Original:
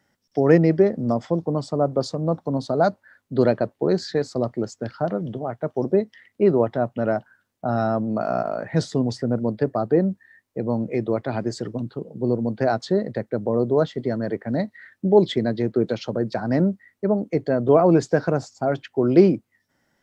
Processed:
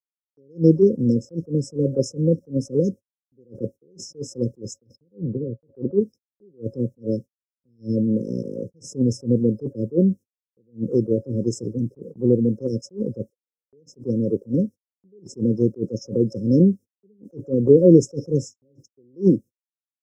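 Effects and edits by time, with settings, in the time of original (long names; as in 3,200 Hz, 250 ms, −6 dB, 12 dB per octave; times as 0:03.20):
0:04.96–0:06.01: low-pass filter 1,300 Hz
0:13.30–0:13.73: high-pass filter 1,300 Hz 24 dB per octave
whole clip: brick-wall band-stop 550–5,100 Hz; noise gate −37 dBFS, range −56 dB; level that may rise only so fast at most 310 dB per second; level +5 dB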